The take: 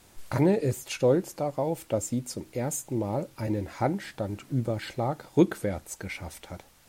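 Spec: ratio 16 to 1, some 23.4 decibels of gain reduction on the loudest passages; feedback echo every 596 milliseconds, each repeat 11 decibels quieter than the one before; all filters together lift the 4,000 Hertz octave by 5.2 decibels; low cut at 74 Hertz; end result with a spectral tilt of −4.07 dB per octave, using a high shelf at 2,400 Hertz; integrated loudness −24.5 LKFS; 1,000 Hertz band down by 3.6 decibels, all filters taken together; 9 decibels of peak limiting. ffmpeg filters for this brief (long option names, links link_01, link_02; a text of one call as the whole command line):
ffmpeg -i in.wav -af "highpass=74,equalizer=frequency=1000:width_type=o:gain=-6,highshelf=frequency=2400:gain=4.5,equalizer=frequency=4000:width_type=o:gain=3,acompressor=threshold=-39dB:ratio=16,alimiter=level_in=10dB:limit=-24dB:level=0:latency=1,volume=-10dB,aecho=1:1:596|1192|1788:0.282|0.0789|0.0221,volume=20.5dB" out.wav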